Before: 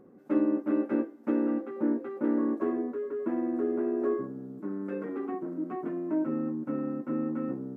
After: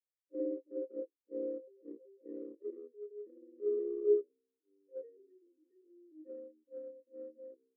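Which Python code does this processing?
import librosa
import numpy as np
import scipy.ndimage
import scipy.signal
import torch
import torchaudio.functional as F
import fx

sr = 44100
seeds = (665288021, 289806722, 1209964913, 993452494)

p1 = fx.cvsd(x, sr, bps=16000)
p2 = fx.graphic_eq_10(p1, sr, hz=(125, 500, 1000, 2000), db=(-5, 12, -6, 4))
p3 = fx.transient(p2, sr, attack_db=-10, sustain_db=2)
p4 = fx.formant_cascade(p3, sr, vowel='e')
p5 = fx.band_shelf(p4, sr, hz=860.0, db=-12.5, octaves=1.7)
p6 = fx.quant_dither(p5, sr, seeds[0], bits=6, dither='none')
p7 = p5 + (p6 * 10.0 ** (-4.0 / 20.0))
p8 = fx.spectral_expand(p7, sr, expansion=2.5)
y = p8 * 10.0 ** (5.5 / 20.0)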